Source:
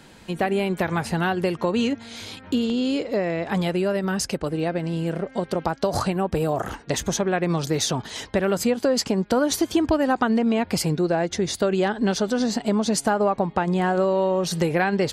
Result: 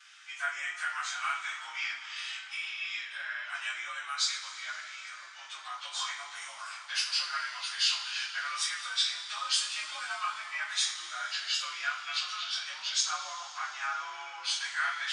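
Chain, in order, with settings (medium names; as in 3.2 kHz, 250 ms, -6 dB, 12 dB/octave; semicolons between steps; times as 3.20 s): frequency axis rescaled in octaves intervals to 91%; inverse Chebyshev high-pass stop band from 500 Hz, stop band 50 dB; two-slope reverb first 0.39 s, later 4 s, from -18 dB, DRR -7 dB; trim -5.5 dB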